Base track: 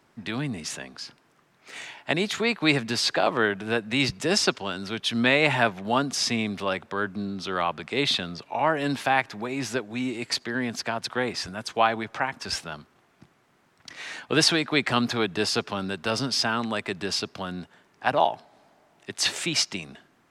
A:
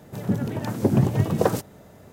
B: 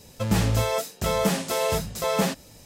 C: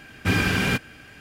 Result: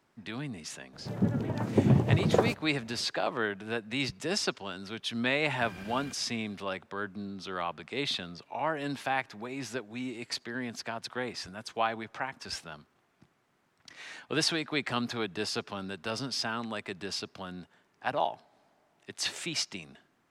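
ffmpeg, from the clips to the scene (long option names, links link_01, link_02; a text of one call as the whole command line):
ffmpeg -i bed.wav -i cue0.wav -i cue1.wav -i cue2.wav -filter_complex "[0:a]volume=-8dB[link_01];[1:a]aemphasis=mode=reproduction:type=50fm[link_02];[3:a]acompressor=threshold=-25dB:ratio=6:attack=3.2:release=140:knee=1:detection=peak[link_03];[link_02]atrim=end=2.12,asetpts=PTS-STARTPTS,volume=-4dB,afade=type=in:duration=0.004:curve=hsin,afade=type=out:start_time=2.116:duration=0.004:curve=hsin,adelay=930[link_04];[link_03]atrim=end=1.2,asetpts=PTS-STARTPTS,volume=-17dB,afade=type=in:duration=0.004:curve=hsin,afade=type=out:start_time=1.196:duration=0.004:curve=hsin,adelay=5360[link_05];[link_01][link_04][link_05]amix=inputs=3:normalize=0" out.wav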